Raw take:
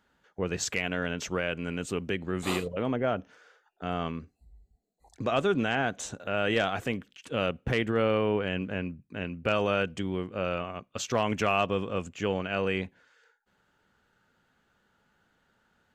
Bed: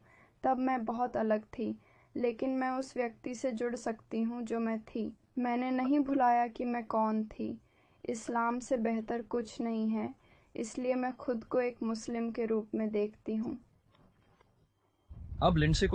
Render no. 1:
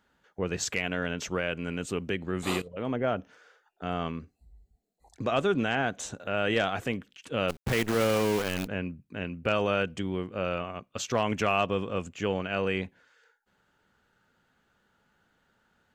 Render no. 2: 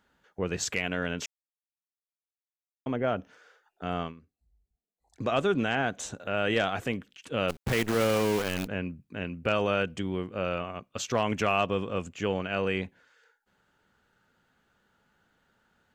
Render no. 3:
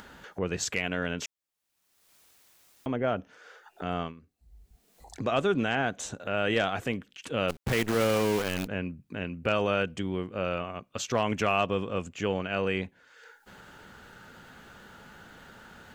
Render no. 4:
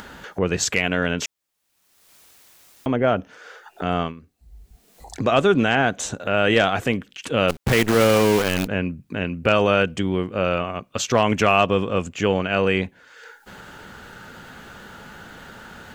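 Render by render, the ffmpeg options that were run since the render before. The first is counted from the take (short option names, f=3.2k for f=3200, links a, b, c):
-filter_complex "[0:a]asplit=3[a][b][c];[a]afade=t=out:st=7.48:d=0.02[d];[b]acrusher=bits=6:dc=4:mix=0:aa=0.000001,afade=t=in:st=7.48:d=0.02,afade=t=out:st=8.66:d=0.02[e];[c]afade=t=in:st=8.66:d=0.02[f];[d][e][f]amix=inputs=3:normalize=0,asplit=2[g][h];[g]atrim=end=2.62,asetpts=PTS-STARTPTS,afade=t=out:st=2.616:d=0.004:c=hsin:silence=0.149624[i];[h]atrim=start=2.62,asetpts=PTS-STARTPTS,afade=t=in:d=0.47:c=qsin:silence=0.149624[j];[i][j]concat=n=2:v=0:a=1"
-filter_complex "[0:a]asplit=5[a][b][c][d][e];[a]atrim=end=1.26,asetpts=PTS-STARTPTS,afade=t=out:st=1.256:d=0.004:c=hsin[f];[b]atrim=start=1.26:end=2.86,asetpts=PTS-STARTPTS,volume=0[g];[c]atrim=start=2.86:end=4.15,asetpts=PTS-STARTPTS,afade=t=in:d=0.004:c=hsin,afade=t=out:st=1.14:d=0.15:silence=0.188365[h];[d]atrim=start=4.15:end=5.07,asetpts=PTS-STARTPTS,volume=-14.5dB[i];[e]atrim=start=5.07,asetpts=PTS-STARTPTS,afade=t=in:d=0.15:silence=0.188365[j];[f][g][h][i][j]concat=n=5:v=0:a=1"
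-af "acompressor=mode=upward:threshold=-33dB:ratio=2.5"
-af "volume=9dB"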